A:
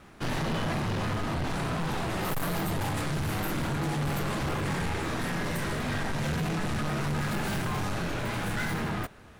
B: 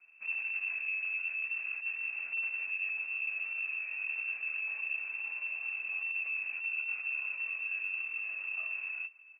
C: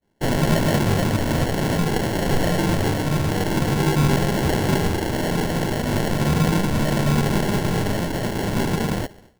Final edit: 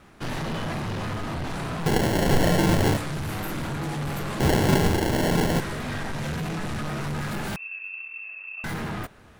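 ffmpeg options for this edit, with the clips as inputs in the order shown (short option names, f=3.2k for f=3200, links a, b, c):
-filter_complex "[2:a]asplit=2[a][b];[0:a]asplit=4[c][d][e][f];[c]atrim=end=1.862[g];[a]atrim=start=1.858:end=2.972[h];[d]atrim=start=2.968:end=4.402[i];[b]atrim=start=4.398:end=5.602[j];[e]atrim=start=5.598:end=7.562[k];[1:a]atrim=start=7.558:end=8.642[l];[f]atrim=start=8.638[m];[g][h]acrossfade=d=0.004:c1=hsin:c2=hsin[n];[n][i]acrossfade=d=0.004:c1=hsin:c2=hsin[o];[o][j]acrossfade=d=0.004:c1=hsin:c2=hsin[p];[p][k]acrossfade=d=0.004:c1=hsin:c2=hsin[q];[q][l]acrossfade=d=0.004:c1=hsin:c2=hsin[r];[r][m]acrossfade=d=0.004:c1=hsin:c2=hsin"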